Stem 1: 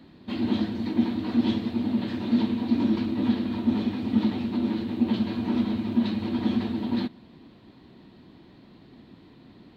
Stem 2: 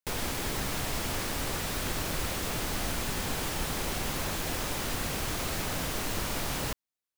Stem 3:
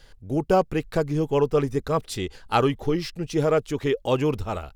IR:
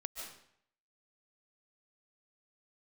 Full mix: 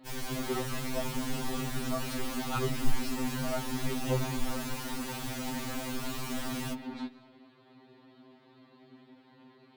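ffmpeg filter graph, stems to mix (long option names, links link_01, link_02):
-filter_complex "[0:a]highpass=frequency=690:poles=1,highshelf=frequency=2000:gain=-10,asoftclip=type=tanh:threshold=-36.5dB,volume=3dB,asplit=2[link_01][link_02];[link_02]volume=-10.5dB[link_03];[1:a]flanger=delay=6.2:depth=8.6:regen=-5:speed=0.74:shape=sinusoidal,volume=-1.5dB,asplit=2[link_04][link_05];[link_05]volume=-20.5dB[link_06];[2:a]bandreject=frequency=60:width_type=h:width=6,bandreject=frequency=120:width_type=h:width=6,bandreject=frequency=180:width_type=h:width=6,bandreject=frequency=240:width_type=h:width=6,bandreject=frequency=300:width_type=h:width=6,bandreject=frequency=360:width_type=h:width=6,bandreject=frequency=420:width_type=h:width=6,bandreject=frequency=480:width_type=h:width=6,bandreject=frequency=540:width_type=h:width=6,agate=range=-43dB:threshold=-40dB:ratio=16:detection=peak,asubboost=boost=11:cutoff=67,volume=-10.5dB[link_07];[3:a]atrim=start_sample=2205[link_08];[link_03][link_06]amix=inputs=2:normalize=0[link_09];[link_09][link_08]afir=irnorm=-1:irlink=0[link_10];[link_01][link_04][link_07][link_10]amix=inputs=4:normalize=0,afftfilt=real='re*2.45*eq(mod(b,6),0)':imag='im*2.45*eq(mod(b,6),0)':win_size=2048:overlap=0.75"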